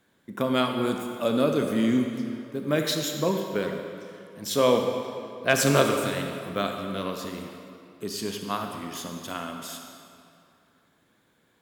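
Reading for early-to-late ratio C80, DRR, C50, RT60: 5.0 dB, 3.5 dB, 4.0 dB, 2.6 s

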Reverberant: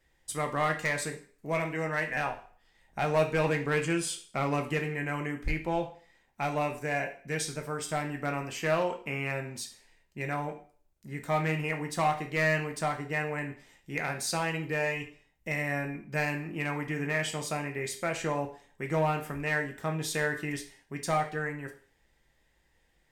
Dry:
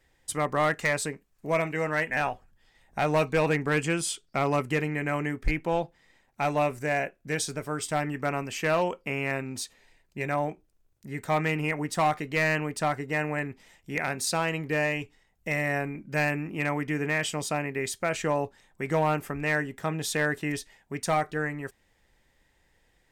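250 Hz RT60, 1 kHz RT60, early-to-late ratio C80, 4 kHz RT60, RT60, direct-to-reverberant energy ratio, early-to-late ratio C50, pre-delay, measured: 0.40 s, 0.45 s, 16.0 dB, 0.45 s, 0.45 s, 4.0 dB, 11.0 dB, 5 ms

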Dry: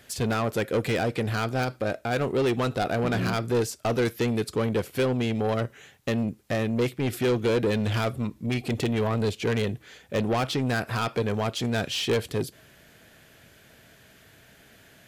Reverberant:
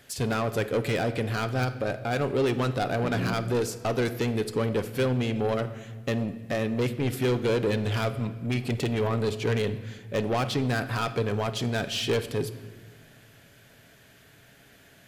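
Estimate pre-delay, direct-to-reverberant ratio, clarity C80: 7 ms, 10.0 dB, 14.5 dB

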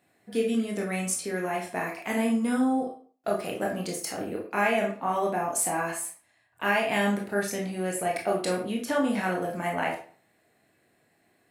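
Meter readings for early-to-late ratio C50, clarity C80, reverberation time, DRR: 6.5 dB, 11.5 dB, 0.45 s, -1.5 dB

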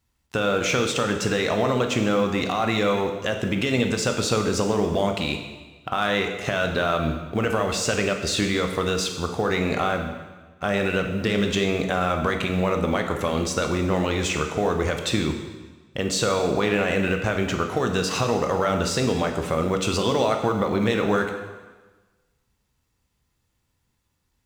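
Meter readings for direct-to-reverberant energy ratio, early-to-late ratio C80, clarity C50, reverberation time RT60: 4.0 dB, 8.0 dB, 6.5 dB, 1.3 s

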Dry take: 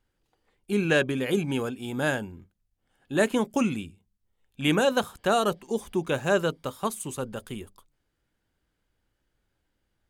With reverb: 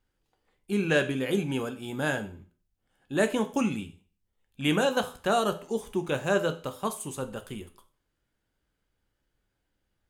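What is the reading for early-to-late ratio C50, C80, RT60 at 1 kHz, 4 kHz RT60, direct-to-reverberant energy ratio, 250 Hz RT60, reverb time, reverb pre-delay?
14.5 dB, 19.5 dB, 0.40 s, 0.40 s, 8.0 dB, 0.40 s, 0.40 s, 12 ms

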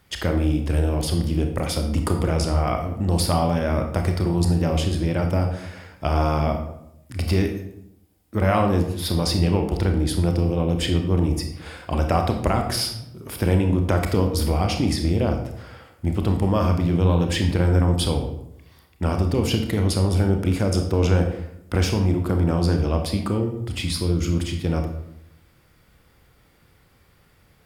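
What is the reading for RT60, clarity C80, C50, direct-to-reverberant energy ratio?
0.80 s, 10.0 dB, 7.0 dB, 4.0 dB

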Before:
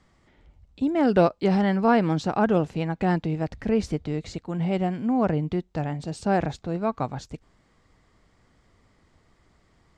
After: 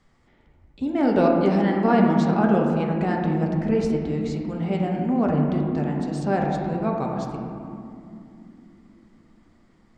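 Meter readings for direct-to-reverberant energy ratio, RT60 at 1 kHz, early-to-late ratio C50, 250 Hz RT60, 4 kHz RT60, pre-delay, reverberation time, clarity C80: -0.5 dB, 2.5 s, 2.0 dB, 4.9 s, 1.3 s, 4 ms, 2.9 s, 3.5 dB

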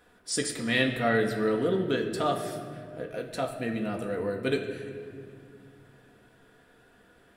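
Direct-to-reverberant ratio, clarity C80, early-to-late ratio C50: 1.5 dB, 8.5 dB, 7.0 dB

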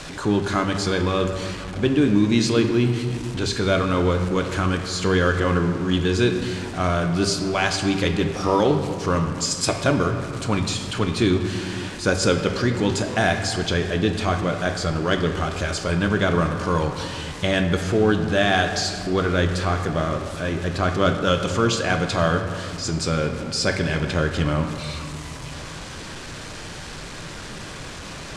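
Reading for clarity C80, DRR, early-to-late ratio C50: 8.0 dB, 4.5 dB, 7.0 dB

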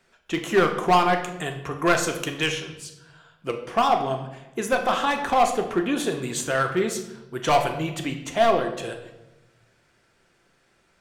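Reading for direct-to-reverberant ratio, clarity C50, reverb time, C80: 4.0 dB, 8.5 dB, 0.95 s, 11.0 dB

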